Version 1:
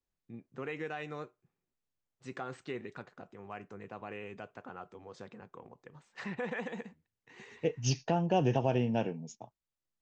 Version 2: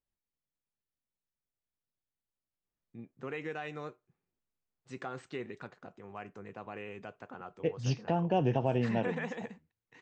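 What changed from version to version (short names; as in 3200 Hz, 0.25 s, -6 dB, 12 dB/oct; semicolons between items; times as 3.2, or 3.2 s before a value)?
first voice: entry +2.65 s; second voice: add air absorption 170 m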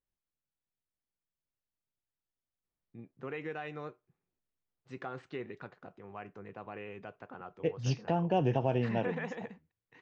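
first voice: add air absorption 140 m; master: add bell 230 Hz -3 dB 0.24 oct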